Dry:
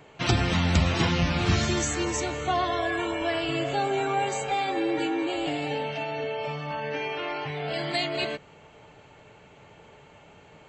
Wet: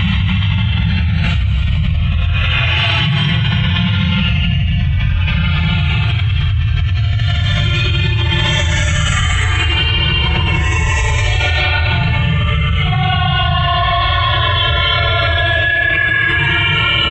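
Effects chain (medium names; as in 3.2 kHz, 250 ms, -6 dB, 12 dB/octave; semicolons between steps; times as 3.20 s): reverb removal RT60 1.3 s; FFT filter 140 Hz 0 dB, 270 Hz -30 dB, 3.2 kHz -5 dB, 4.9 kHz -29 dB; time stretch by phase-locked vocoder 1.6×; early reflections 16 ms -15.5 dB, 53 ms -4.5 dB; Paulstretch 4.2×, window 0.05 s, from 0.89 s; gated-style reverb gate 330 ms rising, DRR -0.5 dB; level flattener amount 100%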